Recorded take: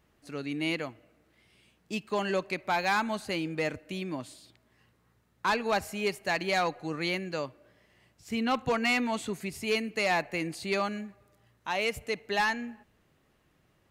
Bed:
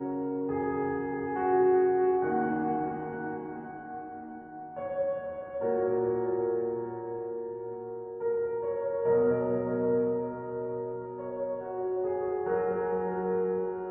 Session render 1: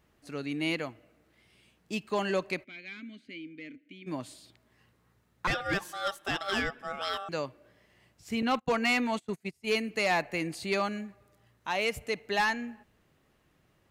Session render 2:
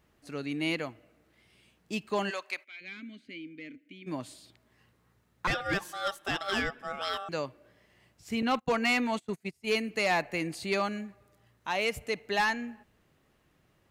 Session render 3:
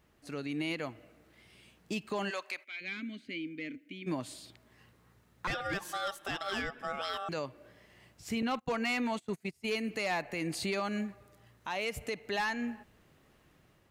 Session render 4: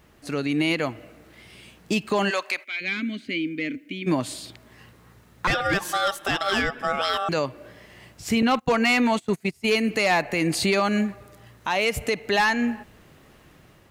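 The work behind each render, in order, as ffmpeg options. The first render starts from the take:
ffmpeg -i in.wav -filter_complex "[0:a]asplit=3[link_01][link_02][link_03];[link_01]afade=type=out:start_time=2.63:duration=0.02[link_04];[link_02]asplit=3[link_05][link_06][link_07];[link_05]bandpass=frequency=270:width_type=q:width=8,volume=0dB[link_08];[link_06]bandpass=frequency=2290:width_type=q:width=8,volume=-6dB[link_09];[link_07]bandpass=frequency=3010:width_type=q:width=8,volume=-9dB[link_10];[link_08][link_09][link_10]amix=inputs=3:normalize=0,afade=type=in:start_time=2.63:duration=0.02,afade=type=out:start_time=4.06:duration=0.02[link_11];[link_03]afade=type=in:start_time=4.06:duration=0.02[link_12];[link_04][link_11][link_12]amix=inputs=3:normalize=0,asettb=1/sr,asplit=3[link_13][link_14][link_15];[link_13]atrim=end=5.474[link_16];[link_14]atrim=start=5.47:end=7.29,asetpts=PTS-STARTPTS,afade=type=in:duration=0.004:curve=qsin,afade=type=out:start_time=1.816:duration=0.004:curve=qsin,aeval=exprs='val(0)*sin(2*PI*980*n/s)':channel_layout=same[link_17];[link_15]atrim=start=7.286[link_18];[link_16][link_17]acrossfade=duration=0.004:curve1=hsin:curve2=qsin[link_19];[link_19][link_18]acrossfade=duration=0.004:curve1=qsin:curve2=hsin,asettb=1/sr,asplit=3[link_20][link_21][link_22];[link_20]atrim=end=8.424[link_23];[link_21]atrim=start=8.42:end=9.82,asetpts=PTS-STARTPTS,afade=type=in:duration=0.004:curve=qsin,afade=type=out:start_time=1.396:duration=0.004:curve=qsin,agate=range=-28dB:threshold=-35dB:ratio=16:release=100:detection=peak[link_24];[link_22]atrim=start=9.816[link_25];[link_23][link_24]acrossfade=duration=0.004:curve1=hsin:curve2=qsin[link_26];[link_26][link_25]acrossfade=duration=0.004:curve1=qsin:curve2=hsin" out.wav
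ffmpeg -i in.wav -filter_complex "[0:a]asplit=3[link_01][link_02][link_03];[link_01]afade=type=out:start_time=2.29:duration=0.02[link_04];[link_02]highpass=940,afade=type=in:start_time=2.29:duration=0.02,afade=type=out:start_time=2.8:duration=0.02[link_05];[link_03]afade=type=in:start_time=2.8:duration=0.02[link_06];[link_04][link_05][link_06]amix=inputs=3:normalize=0" out.wav
ffmpeg -i in.wav -af "alimiter=level_in=5.5dB:limit=-24dB:level=0:latency=1:release=171,volume=-5.5dB,dynaudnorm=framelen=190:gausssize=5:maxgain=4dB" out.wav
ffmpeg -i in.wav -af "volume=12dB" out.wav

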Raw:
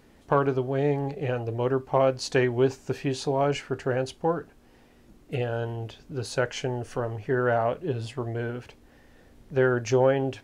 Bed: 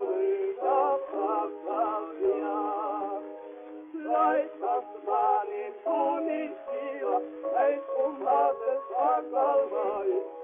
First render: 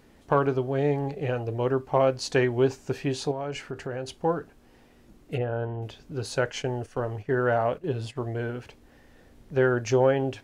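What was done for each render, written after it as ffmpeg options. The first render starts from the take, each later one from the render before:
ffmpeg -i in.wav -filter_complex "[0:a]asettb=1/sr,asplit=3[link_01][link_02][link_03];[link_01]atrim=end=3.314[link_04];[link_02]atrim=start=3.31:end=4.21,asetpts=PTS-STARTPTS,afade=type=in:duration=0.004:curve=qsin,afade=type=out:start_time=0.896:duration=0.004:curve=qsin,acompressor=threshold=-31dB:ratio=3:attack=3.2:release=140:knee=1:detection=peak[link_05];[link_03]atrim=start=4.206[link_06];[link_04][link_05]acrossfade=duration=0.004:curve1=hsin:curve2=qsin[link_07];[link_07][link_06]acrossfade=duration=0.004:curve1=qsin:curve2=hsin,asplit=3[link_08][link_09][link_10];[link_08]afade=type=out:start_time=5.37:duration=0.02[link_11];[link_09]lowpass=1700,afade=type=in:start_time=5.37:duration=0.02,afade=type=out:start_time=5.81:duration=0.02[link_12];[link_10]afade=type=in:start_time=5.81:duration=0.02[link_13];[link_11][link_12][link_13]amix=inputs=3:normalize=0,asplit=3[link_14][link_15][link_16];[link_14]afade=type=out:start_time=6.49:duration=0.02[link_17];[link_15]agate=range=-9dB:threshold=-40dB:ratio=16:release=100:detection=peak,afade=type=in:start_time=6.49:duration=0.02,afade=type=out:start_time=8.15:duration=0.02[link_18];[link_16]afade=type=in:start_time=8.15:duration=0.02[link_19];[link_17][link_18][link_19]amix=inputs=3:normalize=0" out.wav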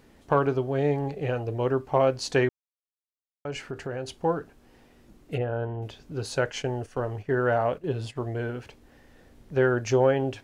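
ffmpeg -i in.wav -filter_complex "[0:a]asplit=3[link_01][link_02][link_03];[link_01]atrim=end=2.49,asetpts=PTS-STARTPTS,afade=type=out:start_time=2.486:duration=0.004:curve=hsin[link_04];[link_02]atrim=start=2.49:end=3.45,asetpts=PTS-STARTPTS,volume=0[link_05];[link_03]atrim=start=3.45,asetpts=PTS-STARTPTS,afade=type=in:duration=0.004:curve=hsin[link_06];[link_04][link_05][link_06]concat=n=3:v=0:a=1" out.wav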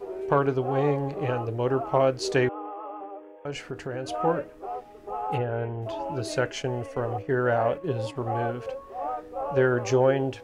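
ffmpeg -i in.wav -i bed.wav -filter_complex "[1:a]volume=-6.5dB[link_01];[0:a][link_01]amix=inputs=2:normalize=0" out.wav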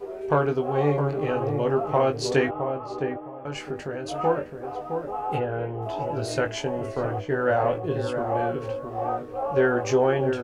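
ffmpeg -i in.wav -filter_complex "[0:a]asplit=2[link_01][link_02];[link_02]adelay=20,volume=-5dB[link_03];[link_01][link_03]amix=inputs=2:normalize=0,asplit=2[link_04][link_05];[link_05]adelay=663,lowpass=frequency=940:poles=1,volume=-5.5dB,asplit=2[link_06][link_07];[link_07]adelay=663,lowpass=frequency=940:poles=1,volume=0.25,asplit=2[link_08][link_09];[link_09]adelay=663,lowpass=frequency=940:poles=1,volume=0.25[link_10];[link_04][link_06][link_08][link_10]amix=inputs=4:normalize=0" out.wav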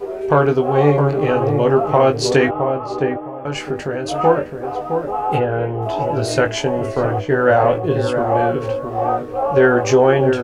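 ffmpeg -i in.wav -af "volume=9dB,alimiter=limit=-3dB:level=0:latency=1" out.wav

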